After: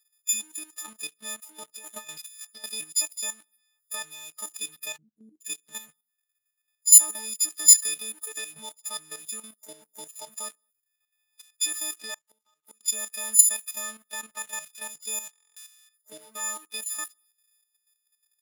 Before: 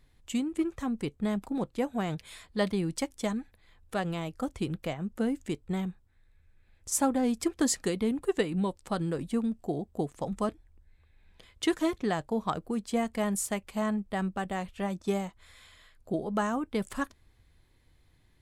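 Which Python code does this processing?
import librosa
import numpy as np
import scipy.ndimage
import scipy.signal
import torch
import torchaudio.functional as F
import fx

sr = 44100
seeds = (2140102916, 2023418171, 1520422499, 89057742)

y = fx.freq_snap(x, sr, grid_st=6)
y = fx.echo_feedback(y, sr, ms=70, feedback_pct=49, wet_db=-23.0)
y = fx.leveller(y, sr, passes=2)
y = fx.cheby2_lowpass(y, sr, hz=750.0, order=4, stop_db=50, at=(4.96, 5.4), fade=0.02)
y = fx.level_steps(y, sr, step_db=11)
y = fx.gate_flip(y, sr, shuts_db=-21.0, range_db=-33, at=(12.14, 12.81))
y = np.diff(y, prepend=0.0)
y = fx.over_compress(y, sr, threshold_db=-41.0, ratio=-0.5, at=(1.77, 2.64))
y = fx.buffer_glitch(y, sr, at_s=(15.31,), block=1024, repeats=10)
y = y * librosa.db_to_amplitude(1.0)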